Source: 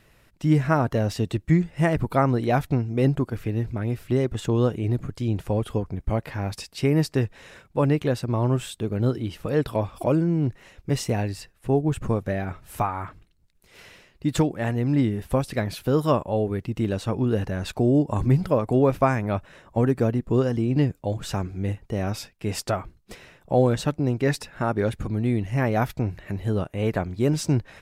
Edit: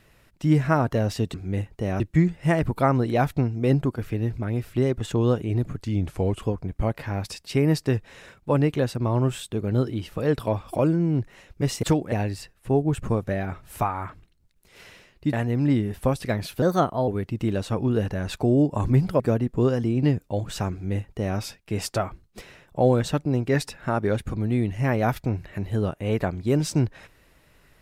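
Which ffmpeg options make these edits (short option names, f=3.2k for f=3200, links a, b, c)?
-filter_complex "[0:a]asplit=11[a][b][c][d][e][f][g][h][i][j][k];[a]atrim=end=1.342[l];[b]atrim=start=21.448:end=22.112[m];[c]atrim=start=1.338:end=5.174[n];[d]atrim=start=5.17:end=5.71,asetpts=PTS-STARTPTS,asetrate=39690,aresample=44100[o];[e]atrim=start=5.706:end=11.112[p];[f]atrim=start=14.318:end=14.612[q];[g]atrim=start=11.108:end=14.322[r];[h]atrim=start=14.608:end=15.904[s];[i]atrim=start=15.9:end=16.44,asetpts=PTS-STARTPTS,asetrate=52038,aresample=44100,atrim=end_sample=20181,asetpts=PTS-STARTPTS[t];[j]atrim=start=16.436:end=18.562[u];[k]atrim=start=19.928[v];[l][m]acrossfade=d=0.004:c1=hsin:c2=hsin[w];[w][n]acrossfade=d=0.004:c1=hsin:c2=hsin[x];[x][o]acrossfade=d=0.004:c1=hsin:c2=hsin[y];[y][p]acrossfade=d=0.004:c1=hsin:c2=hsin[z];[z][q]acrossfade=d=0.004:c1=hsin:c2=hsin[aa];[aa][r]acrossfade=d=0.004:c1=hsin:c2=hsin[ab];[ab][s]acrossfade=d=0.004:c1=hsin:c2=hsin[ac];[ac][t]acrossfade=d=0.004:c1=hsin:c2=hsin[ad];[ad][u]acrossfade=d=0.004:c1=hsin:c2=hsin[ae];[ae][v]acrossfade=d=0.004:c1=hsin:c2=hsin"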